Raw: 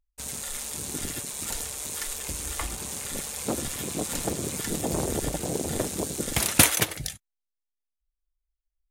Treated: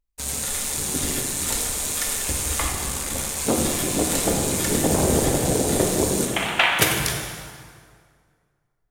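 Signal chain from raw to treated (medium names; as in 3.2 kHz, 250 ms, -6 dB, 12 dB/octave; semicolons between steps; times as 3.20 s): 2.68–3.38 s: cycle switcher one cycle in 3, muted; 6.25–6.79 s: elliptic band-pass 660–3200 Hz; waveshaping leveller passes 1; plate-style reverb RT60 2 s, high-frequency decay 0.75×, DRR 0 dB; trim +2 dB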